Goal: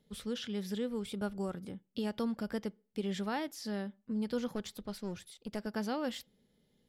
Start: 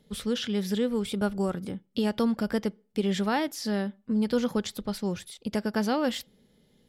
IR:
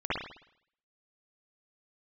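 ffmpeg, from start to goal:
-filter_complex "[0:a]asettb=1/sr,asplit=3[s0][s1][s2];[s0]atrim=end=4.474[s3];[s1]atrim=start=4.47:end=5.67,asetpts=PTS-STARTPTS,afade=t=in:d=0.004:c=qsin,afade=t=out:st=1.196:d=0.004:c=qsin,aeval=exprs='clip(val(0),-1,0.0266)':c=same[s4];[s2]atrim=start=5.666[s5];[s3][s4]acrossfade=d=0.004:c1=hsin:c2=qsin[s6];[s6][s5]acrossfade=d=0.004:c1=qsin:c2=hsin,volume=0.355"

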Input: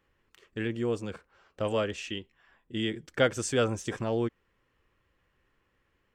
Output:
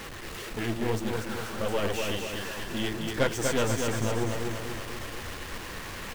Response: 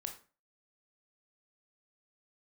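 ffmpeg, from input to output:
-af "aeval=exprs='val(0)+0.5*0.0316*sgn(val(0))':c=same,flanger=delay=3.7:depth=9.4:regen=44:speed=1.8:shape=triangular,aeval=exprs='0.251*(cos(1*acos(clip(val(0)/0.251,-1,1)))-cos(1*PI/2))+0.0282*(cos(8*acos(clip(val(0)/0.251,-1,1)))-cos(8*PI/2))':c=same,aecho=1:1:242|484|726|968|1210|1452|1694:0.631|0.347|0.191|0.105|0.0577|0.0318|0.0175"

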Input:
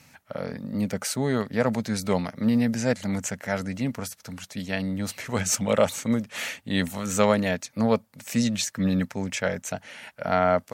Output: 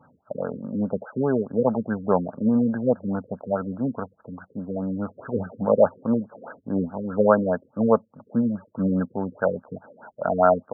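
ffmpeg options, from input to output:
-af "aemphasis=mode=production:type=bsi,afftfilt=real='re*lt(b*sr/1024,500*pow(1700/500,0.5+0.5*sin(2*PI*4.8*pts/sr)))':imag='im*lt(b*sr/1024,500*pow(1700/500,0.5+0.5*sin(2*PI*4.8*pts/sr)))':win_size=1024:overlap=0.75,volume=2.11"

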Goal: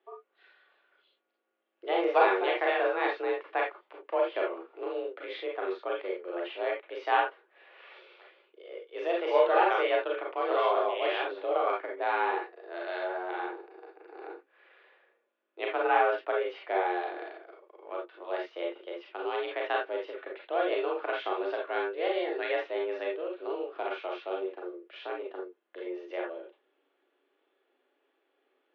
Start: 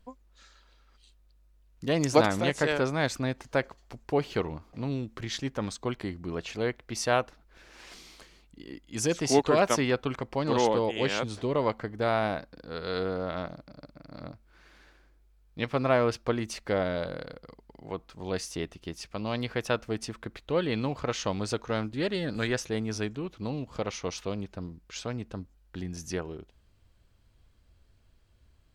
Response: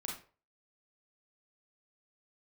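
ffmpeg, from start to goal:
-filter_complex "[1:a]atrim=start_sample=2205,atrim=end_sample=3969[s0];[0:a][s0]afir=irnorm=-1:irlink=0,highpass=f=160:t=q:w=0.5412,highpass=f=160:t=q:w=1.307,lowpass=f=3100:t=q:w=0.5176,lowpass=f=3100:t=q:w=0.7071,lowpass=f=3100:t=q:w=1.932,afreqshift=180"

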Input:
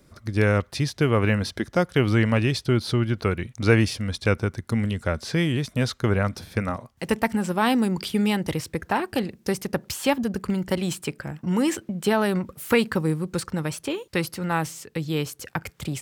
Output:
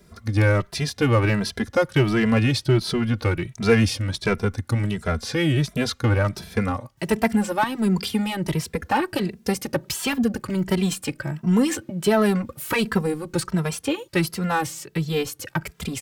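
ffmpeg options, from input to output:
-filter_complex "[0:a]asettb=1/sr,asplit=3[s0][s1][s2];[s0]atrim=end=7.634[s3];[s1]atrim=start=7.63:end=8.91,asetpts=PTS-STARTPTS,afade=t=in:d=0.004:c=qsin,afade=t=out:st=1.276:d=0.004:c=qsin,acrossover=split=240[s4][s5];[s5]acompressor=threshold=0.0501:ratio=6[s6];[s4][s6]amix=inputs=2:normalize=0[s7];[s2]atrim=start=8.906[s8];[s3][s7]acrossfade=d=0.004:c1=hsin:c2=qsin[s9];[s9][s8]acrossfade=d=0.004:c1=qsin:c2=hsin,asplit=2[s10][s11];[s11]asoftclip=type=hard:threshold=0.075,volume=0.668[s12];[s10][s12]amix=inputs=2:normalize=0,asplit=2[s13][s14];[s14]adelay=2.6,afreqshift=1.4[s15];[s13][s15]amix=inputs=2:normalize=1,volume=1.26"

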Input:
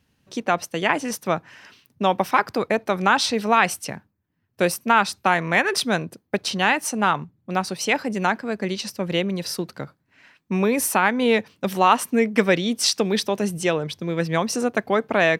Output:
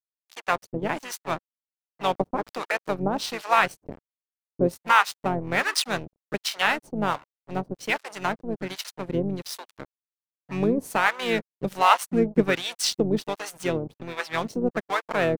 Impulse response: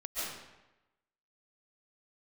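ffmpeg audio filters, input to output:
-filter_complex "[0:a]aeval=exprs='sgn(val(0))*max(abs(val(0))-0.0282,0)':c=same,acrossover=split=690[s0][s1];[s0]aeval=exprs='val(0)*(1-1/2+1/2*cos(2*PI*1.3*n/s))':c=same[s2];[s1]aeval=exprs='val(0)*(1-1/2-1/2*cos(2*PI*1.3*n/s))':c=same[s3];[s2][s3]amix=inputs=2:normalize=0,asplit=2[s4][s5];[s5]asetrate=33038,aresample=44100,atempo=1.33484,volume=0.398[s6];[s4][s6]amix=inputs=2:normalize=0,volume=1.19"

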